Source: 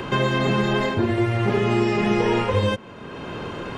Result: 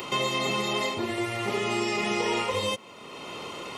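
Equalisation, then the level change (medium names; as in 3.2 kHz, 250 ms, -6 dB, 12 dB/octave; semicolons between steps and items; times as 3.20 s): Butterworth band-stop 1.6 kHz, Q 5.2; RIAA curve recording; -4.0 dB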